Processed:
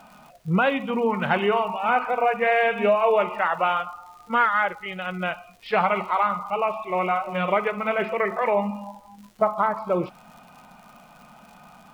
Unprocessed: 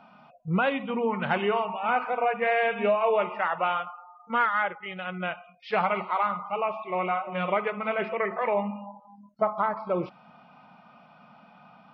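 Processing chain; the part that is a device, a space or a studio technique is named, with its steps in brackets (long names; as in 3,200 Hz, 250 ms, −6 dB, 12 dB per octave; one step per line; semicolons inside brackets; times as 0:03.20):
vinyl LP (surface crackle 110 per second −44 dBFS; pink noise bed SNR 38 dB)
level +4 dB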